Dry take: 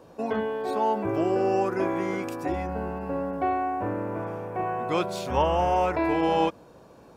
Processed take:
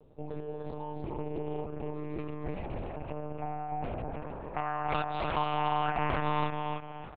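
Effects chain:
loose part that buzzes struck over −30 dBFS, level −26 dBFS
parametric band 1,600 Hz −15 dB 2.7 octaves, from 0:02.18 −4.5 dB, from 0:04.56 +12 dB
downward compressor 2 to 1, threshold −33 dBFS, peak gain reduction 12 dB
repeating echo 295 ms, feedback 31%, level −4 dB
one-pitch LPC vocoder at 8 kHz 150 Hz
highs frequency-modulated by the lows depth 0.56 ms
level −3.5 dB

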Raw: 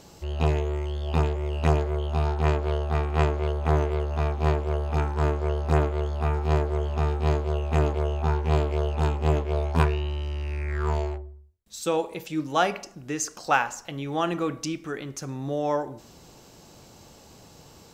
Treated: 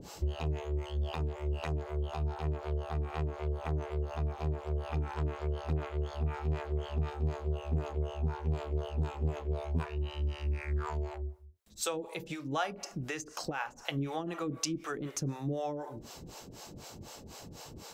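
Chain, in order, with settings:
0:04.74–0:07.10: dynamic equaliser 2,600 Hz, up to +7 dB, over −46 dBFS, Q 0.8
downward compressor 6 to 1, threshold −34 dBFS, peak gain reduction 17.5 dB
two-band tremolo in antiphase 4 Hz, depth 100%, crossover 460 Hz
level +6.5 dB

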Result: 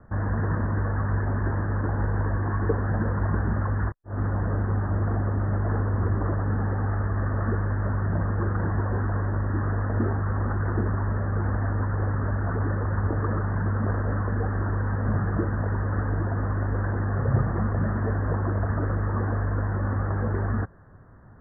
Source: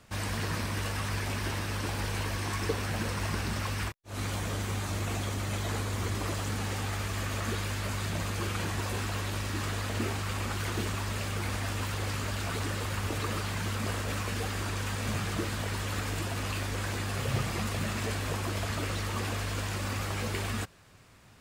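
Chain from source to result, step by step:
Butterworth low-pass 1,800 Hz 96 dB per octave
spectral tilt −1.5 dB per octave
level +4 dB

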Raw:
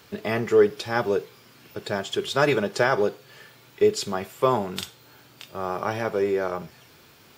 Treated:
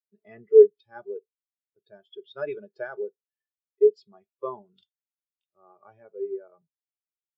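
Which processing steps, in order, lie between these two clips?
low-pass filter 4,800 Hz 12 dB per octave
high-shelf EQ 2,200 Hz +10.5 dB
every bin expanded away from the loudest bin 2.5 to 1

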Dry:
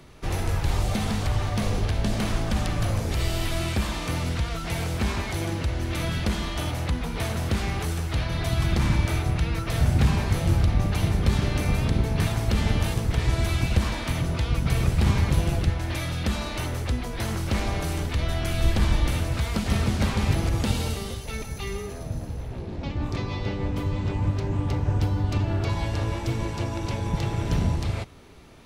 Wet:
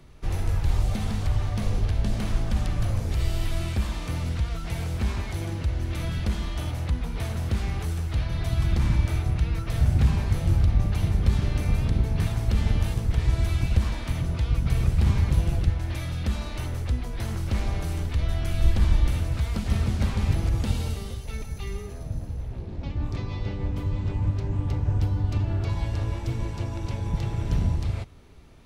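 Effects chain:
low-shelf EQ 120 Hz +10.5 dB
level −6.5 dB

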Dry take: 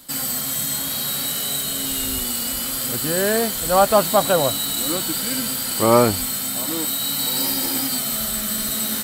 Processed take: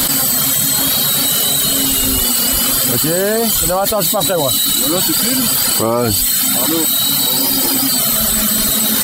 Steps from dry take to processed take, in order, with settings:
reverb reduction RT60 0.92 s
dynamic equaliser 1,900 Hz, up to −4 dB, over −38 dBFS, Q 1.7
envelope flattener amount 100%
level −2.5 dB

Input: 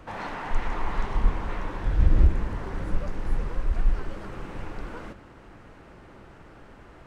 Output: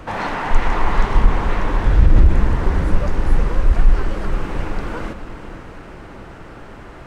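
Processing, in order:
feedback delay with all-pass diffusion 480 ms, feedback 44%, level −11.5 dB
boost into a limiter +12 dB
level −1 dB

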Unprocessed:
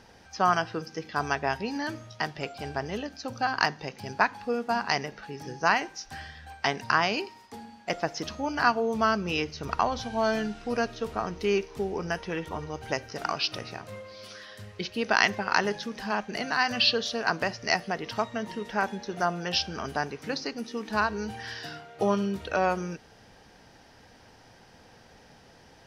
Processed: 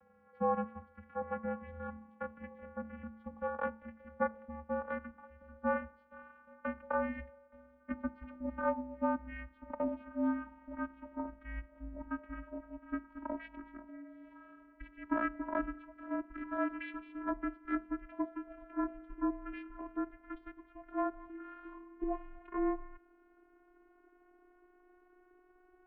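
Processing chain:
vocoder with a gliding carrier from D4, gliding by +4 semitones
single-sideband voice off tune −380 Hz 500–2,400 Hz
hum removal 221.3 Hz, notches 5
level −6 dB

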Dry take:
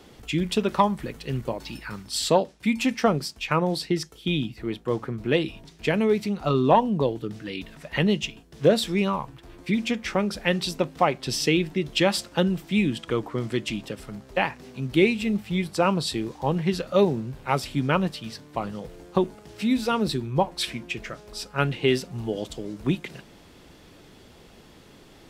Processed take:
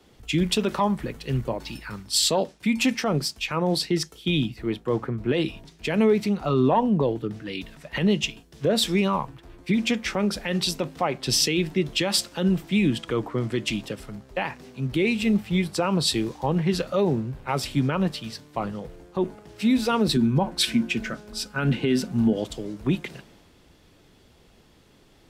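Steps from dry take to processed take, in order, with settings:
0:20.16–0:22.33: hollow resonant body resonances 230/1,500 Hz, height 14 dB, ringing for 70 ms
brickwall limiter −16.5 dBFS, peak gain reduction 11.5 dB
multiband upward and downward expander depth 40%
level +3.5 dB

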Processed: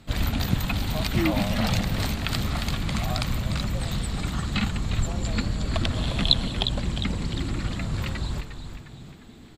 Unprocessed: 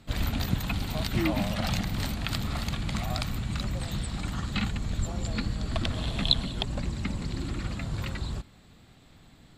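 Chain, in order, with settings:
echo with shifted repeats 355 ms, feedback 48%, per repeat −98 Hz, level −9 dB
level +3.5 dB

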